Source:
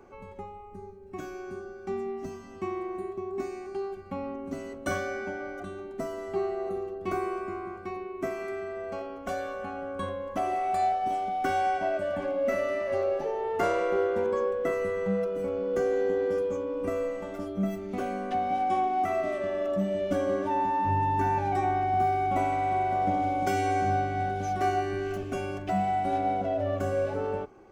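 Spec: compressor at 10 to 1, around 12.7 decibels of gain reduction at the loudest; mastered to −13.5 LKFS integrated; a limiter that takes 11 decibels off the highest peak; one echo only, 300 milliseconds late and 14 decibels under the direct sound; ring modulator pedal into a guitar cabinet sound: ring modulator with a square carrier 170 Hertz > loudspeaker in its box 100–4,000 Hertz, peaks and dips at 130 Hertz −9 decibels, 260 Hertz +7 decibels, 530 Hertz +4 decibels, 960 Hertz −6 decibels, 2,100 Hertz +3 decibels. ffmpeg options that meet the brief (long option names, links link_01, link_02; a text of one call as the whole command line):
ffmpeg -i in.wav -af "acompressor=threshold=-36dB:ratio=10,alimiter=level_in=11.5dB:limit=-24dB:level=0:latency=1,volume=-11.5dB,aecho=1:1:300:0.2,aeval=exprs='val(0)*sgn(sin(2*PI*170*n/s))':channel_layout=same,highpass=100,equalizer=frequency=130:width_type=q:width=4:gain=-9,equalizer=frequency=260:width_type=q:width=4:gain=7,equalizer=frequency=530:width_type=q:width=4:gain=4,equalizer=frequency=960:width_type=q:width=4:gain=-6,equalizer=frequency=2100:width_type=q:width=4:gain=3,lowpass=frequency=4000:width=0.5412,lowpass=frequency=4000:width=1.3066,volume=28.5dB" out.wav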